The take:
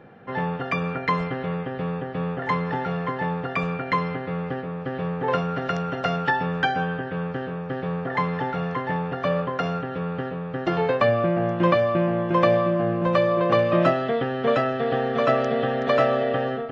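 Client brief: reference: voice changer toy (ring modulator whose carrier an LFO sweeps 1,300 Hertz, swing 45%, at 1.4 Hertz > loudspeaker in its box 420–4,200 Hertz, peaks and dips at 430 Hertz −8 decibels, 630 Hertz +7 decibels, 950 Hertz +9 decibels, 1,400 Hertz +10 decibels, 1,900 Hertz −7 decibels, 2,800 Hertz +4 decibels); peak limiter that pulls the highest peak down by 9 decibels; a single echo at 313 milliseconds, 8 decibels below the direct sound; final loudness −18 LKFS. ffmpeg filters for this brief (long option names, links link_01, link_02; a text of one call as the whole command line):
ffmpeg -i in.wav -af "alimiter=limit=-15dB:level=0:latency=1,aecho=1:1:313:0.398,aeval=exprs='val(0)*sin(2*PI*1300*n/s+1300*0.45/1.4*sin(2*PI*1.4*n/s))':channel_layout=same,highpass=420,equalizer=frequency=430:width_type=q:width=4:gain=-8,equalizer=frequency=630:width_type=q:width=4:gain=7,equalizer=frequency=950:width_type=q:width=4:gain=9,equalizer=frequency=1400:width_type=q:width=4:gain=10,equalizer=frequency=1900:width_type=q:width=4:gain=-7,equalizer=frequency=2800:width_type=q:width=4:gain=4,lowpass=frequency=4200:width=0.5412,lowpass=frequency=4200:width=1.3066,volume=4.5dB" out.wav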